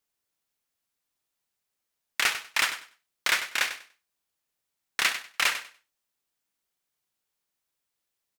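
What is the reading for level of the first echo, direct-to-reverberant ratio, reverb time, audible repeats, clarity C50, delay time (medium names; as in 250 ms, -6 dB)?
-11.5 dB, no reverb, no reverb, 2, no reverb, 97 ms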